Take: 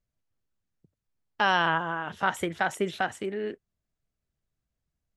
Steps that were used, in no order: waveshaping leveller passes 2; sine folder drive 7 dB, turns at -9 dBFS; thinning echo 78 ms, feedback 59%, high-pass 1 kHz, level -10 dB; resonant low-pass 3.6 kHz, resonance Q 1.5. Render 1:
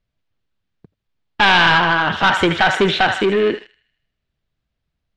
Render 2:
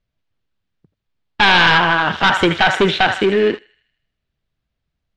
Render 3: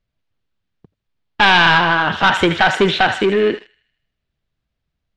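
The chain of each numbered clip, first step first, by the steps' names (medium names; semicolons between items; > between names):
thinning echo > sine folder > waveshaping leveller > resonant low-pass; thinning echo > waveshaping leveller > sine folder > resonant low-pass; sine folder > thinning echo > waveshaping leveller > resonant low-pass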